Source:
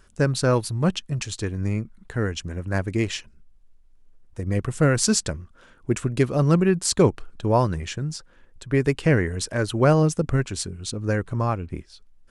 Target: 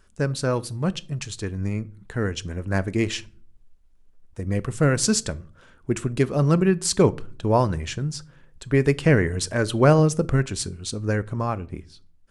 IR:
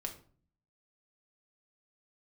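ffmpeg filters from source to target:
-filter_complex "[0:a]dynaudnorm=f=900:g=5:m=3.76,asplit=2[s0][s1];[1:a]atrim=start_sample=2205[s2];[s1][s2]afir=irnorm=-1:irlink=0,volume=0.335[s3];[s0][s3]amix=inputs=2:normalize=0,volume=0.531"

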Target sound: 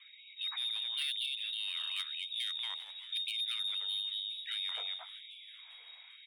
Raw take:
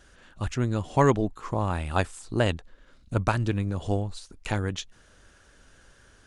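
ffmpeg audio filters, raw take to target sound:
-filter_complex "[0:a]equalizer=f=450:t=o:w=0.29:g=-13.5,lowpass=f=3200:t=q:w=0.5098,lowpass=f=3200:t=q:w=0.6013,lowpass=f=3200:t=q:w=0.9,lowpass=f=3200:t=q:w=2.563,afreqshift=-3800,lowshelf=f=230:g=-8.5,asplit=2[s0][s1];[s1]aecho=0:1:231:0.531[s2];[s0][s2]amix=inputs=2:normalize=0,asoftclip=type=tanh:threshold=0.106,bandreject=f=45.54:t=h:w=4,bandreject=f=91.08:t=h:w=4,bandreject=f=136.62:t=h:w=4,bandreject=f=182.16:t=h:w=4,bandreject=f=227.7:t=h:w=4,bandreject=f=273.24:t=h:w=4,bandreject=f=318.78:t=h:w=4,bandreject=f=364.32:t=h:w=4,bandreject=f=409.86:t=h:w=4,bandreject=f=455.4:t=h:w=4,bandreject=f=500.94:t=h:w=4,bandreject=f=546.48:t=h:w=4,bandreject=f=592.02:t=h:w=4,bandreject=f=637.56:t=h:w=4,bandreject=f=683.1:t=h:w=4,bandreject=f=728.64:t=h:w=4,bandreject=f=774.18:t=h:w=4,bandreject=f=819.72:t=h:w=4,bandreject=f=865.26:t=h:w=4,asplit=2[s3][s4];[s4]asplit=4[s5][s6][s7][s8];[s5]adelay=396,afreqshift=-120,volume=0.075[s9];[s6]adelay=792,afreqshift=-240,volume=0.0452[s10];[s7]adelay=1188,afreqshift=-360,volume=0.0269[s11];[s8]adelay=1584,afreqshift=-480,volume=0.0162[s12];[s9][s10][s11][s12]amix=inputs=4:normalize=0[s13];[s3][s13]amix=inputs=2:normalize=0,alimiter=level_in=2.11:limit=0.0631:level=0:latency=1:release=210,volume=0.473,afftfilt=real='re*gte(b*sr/1024,400*pow(2200/400,0.5+0.5*sin(2*PI*0.98*pts/sr)))':imag='im*gte(b*sr/1024,400*pow(2200/400,0.5+0.5*sin(2*PI*0.98*pts/sr)))':win_size=1024:overlap=0.75"

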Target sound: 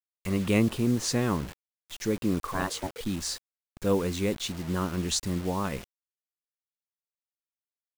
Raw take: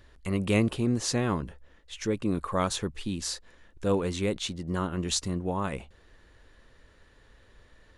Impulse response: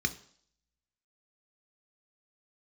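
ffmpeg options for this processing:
-filter_complex "[0:a]asettb=1/sr,asplit=3[s0][s1][s2];[s0]atrim=end=2.534[s3];[s1]atrim=start=2.53:end=3.01,asetpts=PTS-STARTPTS,afade=t=in:d=0.004:c=qsin,afade=t=out:st=0.476:d=0.004:c=qsin,aeval=exprs='val(0)*sin(2*PI*470*n/s)':c=same[s4];[s2]atrim=start=3.006[s5];[s3][s4]acrossfade=d=0.004:c1=hsin:c2=qsin[s6];[s6][s5]acrossfade=d=0.004:c1=qsin:c2=hsin,asplit=2[s7][s8];[1:a]atrim=start_sample=2205,asetrate=79380,aresample=44100[s9];[s8][s9]afir=irnorm=-1:irlink=0,volume=0.0891[s10];[s7][s10]amix=inputs=2:normalize=0,acrusher=bits=6:mix=0:aa=0.000001"

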